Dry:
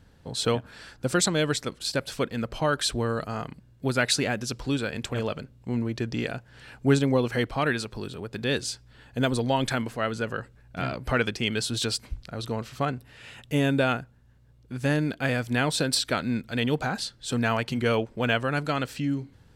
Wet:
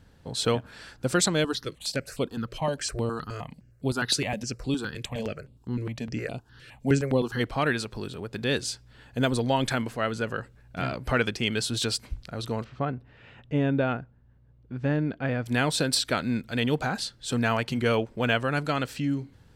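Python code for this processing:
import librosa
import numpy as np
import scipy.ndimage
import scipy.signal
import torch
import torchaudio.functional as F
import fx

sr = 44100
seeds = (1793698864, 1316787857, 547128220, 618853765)

y = fx.phaser_held(x, sr, hz=9.7, low_hz=220.0, high_hz=5900.0, at=(1.43, 7.39), fade=0.02)
y = fx.spacing_loss(y, sr, db_at_10k=32, at=(12.64, 15.46))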